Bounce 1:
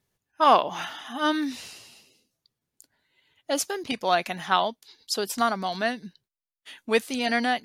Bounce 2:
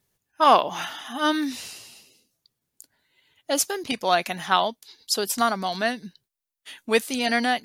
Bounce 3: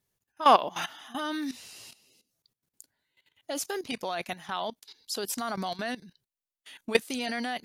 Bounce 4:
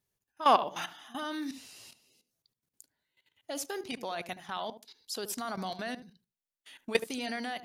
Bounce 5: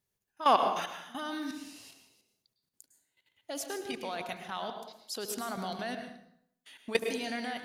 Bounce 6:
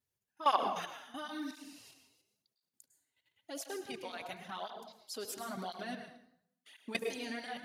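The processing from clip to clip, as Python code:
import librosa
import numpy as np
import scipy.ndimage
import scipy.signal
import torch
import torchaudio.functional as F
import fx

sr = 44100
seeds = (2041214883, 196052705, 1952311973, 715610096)

y1 = fx.high_shelf(x, sr, hz=6600.0, db=7.0)
y1 = y1 * 10.0 ** (1.5 / 20.0)
y2 = fx.level_steps(y1, sr, step_db=16)
y3 = fx.echo_filtered(y2, sr, ms=74, feedback_pct=17, hz=840.0, wet_db=-10.5)
y3 = y3 * 10.0 ** (-4.0 / 20.0)
y4 = fx.rev_plate(y3, sr, seeds[0], rt60_s=0.71, hf_ratio=0.7, predelay_ms=95, drr_db=6.0)
y4 = y4 * 10.0 ** (-1.0 / 20.0)
y5 = fx.flanger_cancel(y4, sr, hz=0.96, depth_ms=6.1)
y5 = y5 * 10.0 ** (-2.0 / 20.0)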